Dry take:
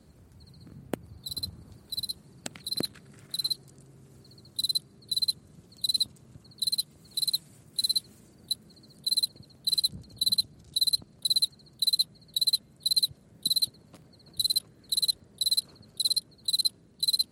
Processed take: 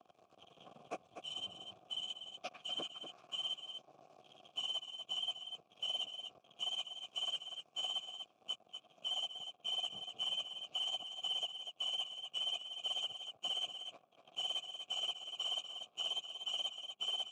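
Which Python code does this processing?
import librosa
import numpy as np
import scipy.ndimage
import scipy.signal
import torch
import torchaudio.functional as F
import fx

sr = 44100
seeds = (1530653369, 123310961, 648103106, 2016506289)

p1 = fx.partial_stretch(x, sr, pct=90)
p2 = fx.leveller(p1, sr, passes=3)
p3 = fx.vowel_filter(p2, sr, vowel='a')
p4 = p3 + fx.echo_single(p3, sr, ms=242, db=-10.0, dry=0)
y = fx.band_squash(p4, sr, depth_pct=40)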